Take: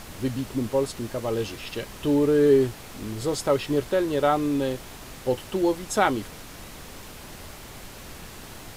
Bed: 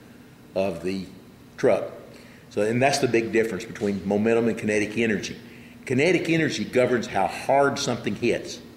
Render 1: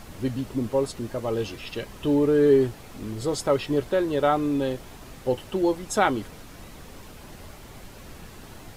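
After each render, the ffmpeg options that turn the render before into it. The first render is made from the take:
-af "afftdn=nr=6:nf=-43"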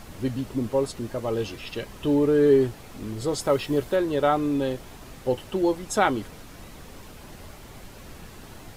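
-filter_complex "[0:a]asettb=1/sr,asplit=3[a][b][c];[a]atrim=end=3.414[d];[b]atrim=start=3.41:end=3.96,asetpts=PTS-STARTPTS,afade=t=in:d=0.004:c=qsin,afade=t=out:st=0.546:d=0.004:c=qsin,highshelf=f=9.8k:g=8[e];[c]atrim=start=3.956[f];[d][e]acrossfade=d=0.004:c1=hsin:c2=qsin[g];[g][f]acrossfade=d=0.004:c1=qsin:c2=hsin"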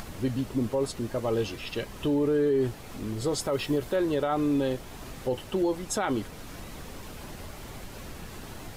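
-af "alimiter=limit=-18.5dB:level=0:latency=1:release=41,acompressor=mode=upward:threshold=-35dB:ratio=2.5"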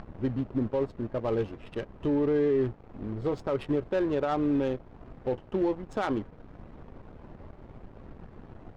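-af "aeval=exprs='sgn(val(0))*max(abs(val(0))-0.00501,0)':c=same,adynamicsmooth=sensitivity=2.5:basefreq=910"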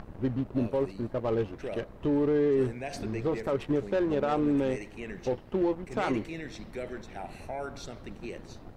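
-filter_complex "[1:a]volume=-17.5dB[a];[0:a][a]amix=inputs=2:normalize=0"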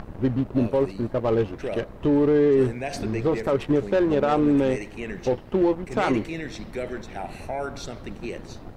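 -af "volume=6.5dB"

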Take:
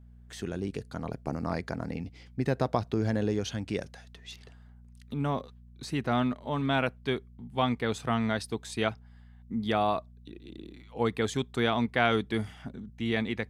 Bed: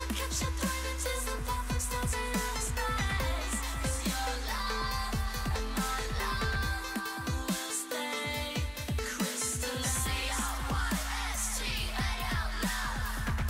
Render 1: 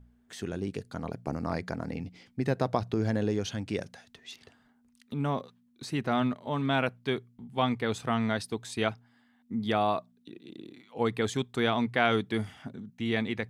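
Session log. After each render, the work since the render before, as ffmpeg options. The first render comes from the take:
-af "bandreject=f=60:t=h:w=4,bandreject=f=120:t=h:w=4,bandreject=f=180:t=h:w=4"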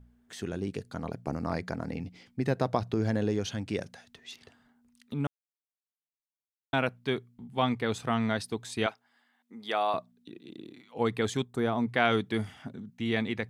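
-filter_complex "[0:a]asettb=1/sr,asplit=3[a][b][c];[a]atrim=end=8.864[d];[b]atrim=start=8.86:end=9.94,asetpts=PTS-STARTPTS,afade=t=in:d=0.004:c=qsin,afade=t=out:st=1.076:d=0.004:c=qsin,highpass=510[e];[c]atrim=start=9.936[f];[d][e]acrossfade=d=0.004:c1=hsin:c2=qsin[g];[g][f]acrossfade=d=0.004:c1=qsin:c2=hsin,asplit=3[h][i][j];[h]afade=t=out:st=11.43:d=0.02[k];[i]equalizer=f=3k:t=o:w=1.8:g=-12.5,afade=t=in:st=11.43:d=0.02,afade=t=out:st=11.87:d=0.02[l];[j]afade=t=in:st=11.87:d=0.02[m];[k][l][m]amix=inputs=3:normalize=0,asplit=3[n][o][p];[n]atrim=end=5.27,asetpts=PTS-STARTPTS,afade=t=out:st=5.266:d=0.004:c=hsin[q];[o]atrim=start=5.27:end=6.73,asetpts=PTS-STARTPTS,volume=0[r];[p]atrim=start=6.73,asetpts=PTS-STARTPTS,afade=t=in:d=0.004:c=hsin[s];[q][r][s]concat=n=3:v=0:a=1"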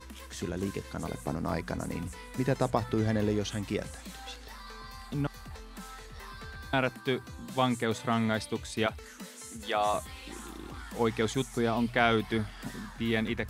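-filter_complex "[1:a]volume=-12.5dB[a];[0:a][a]amix=inputs=2:normalize=0"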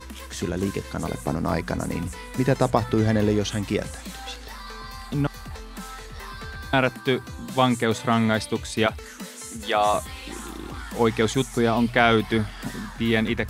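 -af "volume=7.5dB,alimiter=limit=-3dB:level=0:latency=1"

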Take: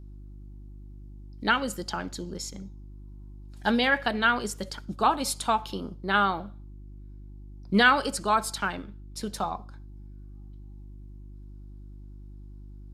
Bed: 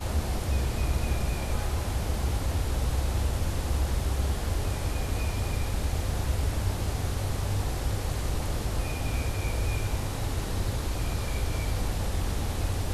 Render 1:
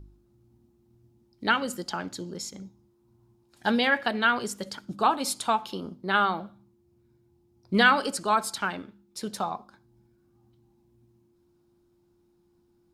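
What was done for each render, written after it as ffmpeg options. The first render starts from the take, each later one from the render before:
-af "bandreject=f=50:t=h:w=4,bandreject=f=100:t=h:w=4,bandreject=f=150:t=h:w=4,bandreject=f=200:t=h:w=4,bandreject=f=250:t=h:w=4,bandreject=f=300:t=h:w=4"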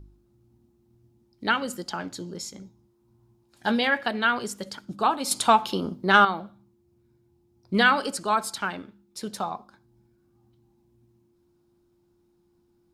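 -filter_complex "[0:a]asettb=1/sr,asplit=3[a][b][c];[a]atrim=end=1.974[d];[b]atrim=start=1.97:end=3.88,asetpts=PTS-STARTPTS,afade=t=in:d=0.004:c=qsin,afade=t=out:st=1.906:d=0.004:c=qsin,asplit=2[e][f];[f]adelay=18,volume=-12dB[g];[e][g]amix=inputs=2:normalize=0,atrim=end_sample=84231[h];[c]atrim=start=3.876[i];[d][h]acrossfade=d=0.004:c1=hsin:c2=qsin[j];[j][i]acrossfade=d=0.004:c1=qsin:c2=hsin,asettb=1/sr,asplit=3[k][l][m];[k]atrim=end=5.314[n];[l]atrim=start=5.31:end=6.25,asetpts=PTS-STARTPTS,afade=t=in:d=0.004:c=qsin,afade=t=out:st=0.936:d=0.004:c=qsin,acontrast=89[o];[m]atrim=start=6.246[p];[n][o]acrossfade=d=0.004:c1=hsin:c2=qsin[q];[q][p]acrossfade=d=0.004:c1=qsin:c2=hsin"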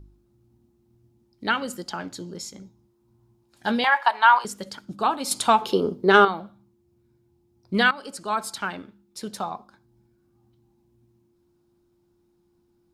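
-filter_complex "[0:a]asettb=1/sr,asplit=3[a][b][c];[a]atrim=end=3.844[d];[b]atrim=start=3.84:end=4.45,asetpts=PTS-STARTPTS,afade=t=in:d=0.004:c=qsin,afade=t=out:st=0.606:d=0.004:c=qsin,highpass=f=930:t=q:w=8[e];[c]atrim=start=4.446[f];[d][e]acrossfade=d=0.004:c1=hsin:c2=qsin[g];[g][f]acrossfade=d=0.004:c1=qsin:c2=hsin,asettb=1/sr,asplit=3[h][i][j];[h]atrim=end=5.614[k];[i]atrim=start=5.61:end=6.28,asetpts=PTS-STARTPTS,afade=t=in:d=0.004:c=qsin,afade=t=out:st=0.666:d=0.004:c=qsin,equalizer=f=430:w=3.2:g=14.5[l];[j]atrim=start=6.276[m];[k][l]acrossfade=d=0.004:c1=hsin:c2=qsin[n];[n][m]acrossfade=d=0.004:c1=qsin:c2=hsin,asplit=2[o][p];[o]atrim=end=7.91,asetpts=PTS-STARTPTS,afade=t=out:st=7.906:d=0.004:c=hsin:silence=0.133352[q];[p]atrim=start=7.91,asetpts=PTS-STARTPTS,afade=t=in:d=0.81:c=qsin:silence=0.133352[r];[q][r]concat=n=2:v=0:a=1"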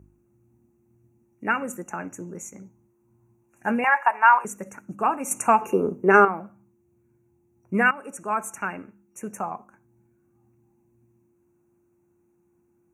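-af "afftfilt=real='re*(1-between(b*sr/4096,2800,5700))':imag='im*(1-between(b*sr/4096,2800,5700))':win_size=4096:overlap=0.75,highpass=82"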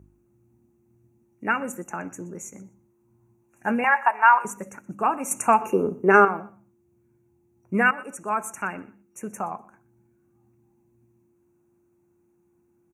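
-af "aecho=1:1:123|246:0.0841|0.0143"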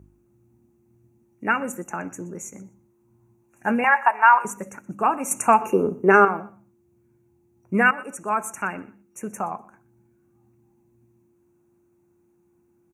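-af "volume=2dB,alimiter=limit=-3dB:level=0:latency=1"

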